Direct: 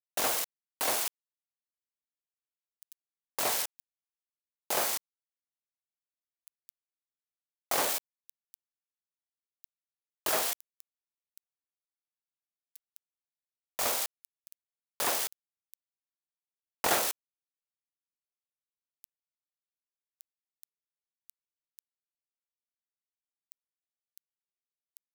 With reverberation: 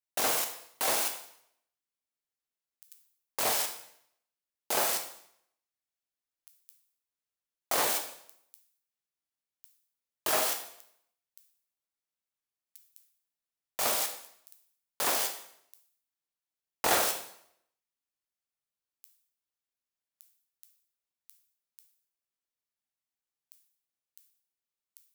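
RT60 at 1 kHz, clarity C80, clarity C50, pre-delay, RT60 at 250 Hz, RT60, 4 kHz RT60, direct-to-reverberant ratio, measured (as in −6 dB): 0.70 s, 11.0 dB, 8.5 dB, 8 ms, 0.70 s, 0.70 s, 0.65 s, 4.0 dB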